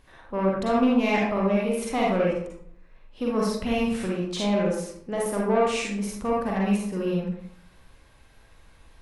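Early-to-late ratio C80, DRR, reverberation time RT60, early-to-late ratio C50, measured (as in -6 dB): 4.5 dB, -4.5 dB, 0.65 s, -0.5 dB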